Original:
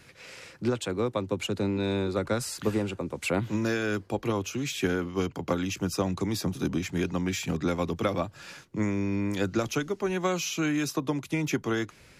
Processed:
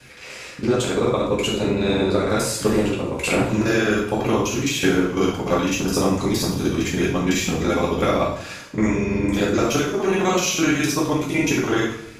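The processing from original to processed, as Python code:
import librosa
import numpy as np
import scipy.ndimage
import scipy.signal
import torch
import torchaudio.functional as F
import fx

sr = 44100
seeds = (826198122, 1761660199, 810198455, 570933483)

y = fx.local_reverse(x, sr, ms=42.0)
y = fx.rev_double_slope(y, sr, seeds[0], early_s=0.53, late_s=1.5, knee_db=-18, drr_db=-5.0)
y = y * 10.0 ** (4.0 / 20.0)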